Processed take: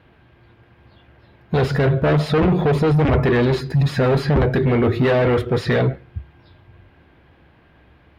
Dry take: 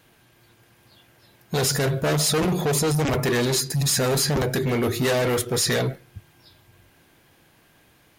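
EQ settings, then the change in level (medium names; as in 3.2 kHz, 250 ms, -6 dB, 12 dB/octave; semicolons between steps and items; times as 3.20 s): distance through air 410 m; peaking EQ 69 Hz +14.5 dB 0.39 oct; +6.5 dB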